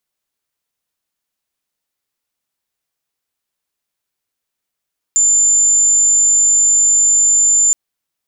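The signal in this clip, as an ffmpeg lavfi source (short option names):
-f lavfi -i "sine=f=7150:d=2.57:r=44100,volume=9.56dB"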